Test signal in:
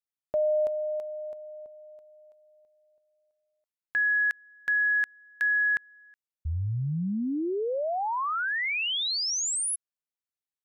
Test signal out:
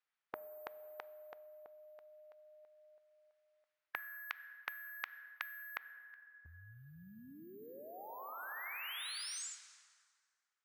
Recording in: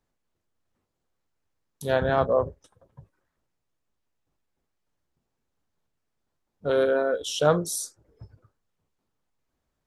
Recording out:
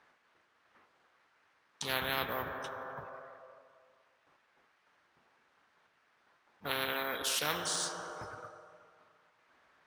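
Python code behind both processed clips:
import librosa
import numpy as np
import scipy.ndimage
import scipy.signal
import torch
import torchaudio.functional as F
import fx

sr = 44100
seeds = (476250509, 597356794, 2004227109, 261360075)

p1 = np.repeat(scipy.signal.resample_poly(x, 1, 3), 3)[:len(x)]
p2 = fx.rev_plate(p1, sr, seeds[0], rt60_s=2.1, hf_ratio=0.7, predelay_ms=0, drr_db=18.0)
p3 = fx.rider(p2, sr, range_db=5, speed_s=0.5)
p4 = p2 + (p3 * librosa.db_to_amplitude(-2.0))
p5 = fx.bandpass_q(p4, sr, hz=1600.0, q=1.2)
p6 = fx.spectral_comp(p5, sr, ratio=4.0)
y = p6 * librosa.db_to_amplitude(-6.0)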